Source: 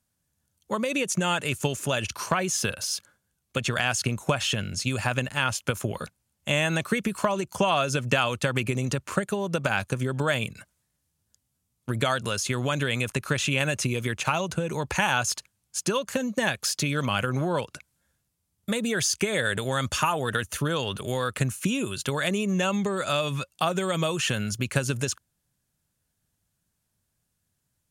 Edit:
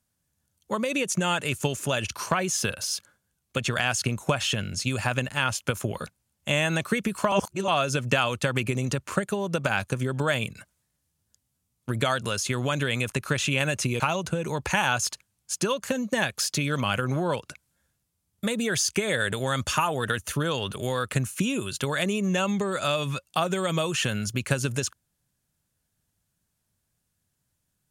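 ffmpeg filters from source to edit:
-filter_complex "[0:a]asplit=4[a][b][c][d];[a]atrim=end=7.322[e];[b]atrim=start=7.318:end=7.682,asetpts=PTS-STARTPTS,areverse[f];[c]atrim=start=7.678:end=14.002[g];[d]atrim=start=14.248[h];[e][f]acrossfade=d=0.004:c1=hsin:c2=hsin[i];[i][g]acrossfade=d=0.004:c1=hsin:c2=hsin[j];[j][h]acrossfade=d=0.004:c1=hsin:c2=hsin"

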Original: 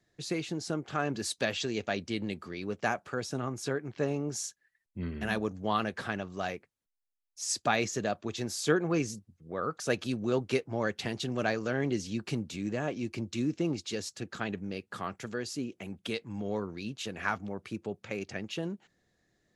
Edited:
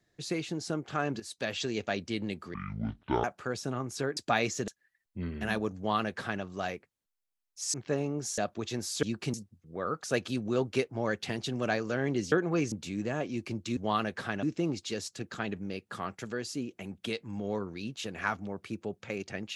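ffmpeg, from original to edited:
-filter_complex "[0:a]asplit=14[a][b][c][d][e][f][g][h][i][j][k][l][m][n];[a]atrim=end=1.2,asetpts=PTS-STARTPTS,afade=t=out:st=1.196:d=0.004:c=hsin:silence=0.199526[o];[b]atrim=start=1.2:end=2.544,asetpts=PTS-STARTPTS,afade=t=in:d=0.43:silence=0.199526[p];[c]atrim=start=2.54:end=2.91,asetpts=PTS-STARTPTS,asetrate=23373,aresample=44100[q];[d]atrim=start=2.906:end=3.842[r];[e]atrim=start=7.538:end=8.052[s];[f]atrim=start=4.478:end=7.542[t];[g]atrim=start=3.838:end=4.482[u];[h]atrim=start=8.048:end=8.702[v];[i]atrim=start=12.078:end=12.392[w];[j]atrim=start=9.098:end=12.082[x];[k]atrim=start=8.698:end=9.102[y];[l]atrim=start=12.388:end=13.442[z];[m]atrim=start=5.568:end=6.232[aa];[n]atrim=start=13.438[ab];[o][p]concat=n=2:v=0:a=1[ac];[ac][q]acrossfade=d=0.004:c1=hsin:c2=hsin[ad];[ad][r]acrossfade=d=0.004:c1=hsin:c2=hsin[ae];[ae][s]acrossfade=d=0.004:c1=hsin:c2=hsin[af];[af][t]acrossfade=d=0.004:c1=hsin:c2=hsin[ag];[ag][u]acrossfade=d=0.004:c1=hsin:c2=hsin[ah];[ah][v]acrossfade=d=0.004:c1=hsin:c2=hsin[ai];[ai][w]acrossfade=d=0.004:c1=hsin:c2=hsin[aj];[aj][x]acrossfade=d=0.004:c1=hsin:c2=hsin[ak];[ak][y]acrossfade=d=0.004:c1=hsin:c2=hsin[al];[al][z]acrossfade=d=0.004:c1=hsin:c2=hsin[am];[am][aa]acrossfade=d=0.004:c1=hsin:c2=hsin[an];[an][ab]acrossfade=d=0.004:c1=hsin:c2=hsin"

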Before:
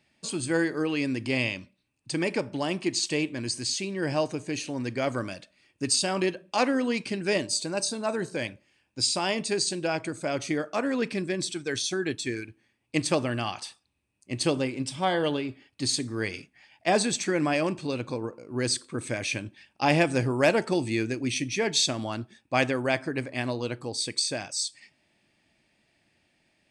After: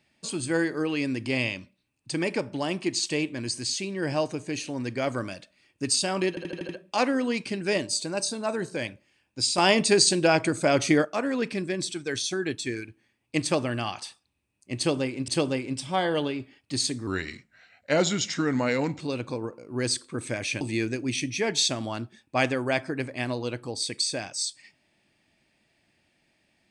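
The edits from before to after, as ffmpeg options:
-filter_complex "[0:a]asplit=12[a][b][c][d][e][f][g][h][i][j][k][l];[a]atrim=end=6.372[m];[b]atrim=start=6.288:end=6.372[n];[c]atrim=start=6.288:end=6.372[o];[d]atrim=start=6.288:end=6.372[p];[e]atrim=start=6.288:end=6.372[q];[f]atrim=start=6.288:end=9.182[r];[g]atrim=start=9.178:end=10.652,asetpts=PTS-STARTPTS,volume=7.5dB[s];[h]atrim=start=10.648:end=14.882[t];[i]atrim=start=14.368:end=16.164[u];[j]atrim=start=16.16:end=17.8,asetpts=PTS-STARTPTS,asetrate=37485,aresample=44100,atrim=end_sample=85087,asetpts=PTS-STARTPTS[v];[k]atrim=start=17.796:end=19.412[w];[l]atrim=start=20.788[x];[m][n]acrossfade=d=0.004:c1=hsin:c2=hsin[y];[y][o]acrossfade=d=0.004:c1=hsin:c2=hsin[z];[z][p]acrossfade=d=0.004:c1=hsin:c2=hsin[aa];[aa][q]acrossfade=d=0.004:c1=hsin:c2=hsin[ab];[ab][r]acrossfade=d=0.004:c1=hsin:c2=hsin[ac];[ac][s]acrossfade=d=0.004:c1=hsin:c2=hsin[ad];[ad][t]acrossfade=d=0.004:c1=hsin:c2=hsin[ae];[ae][u]acrossfade=d=0.004:c1=hsin:c2=hsin[af];[af][v]acrossfade=d=0.004:c1=hsin:c2=hsin[ag];[ag][w]acrossfade=d=0.004:c1=hsin:c2=hsin[ah];[ah][x]acrossfade=d=0.004:c1=hsin:c2=hsin"

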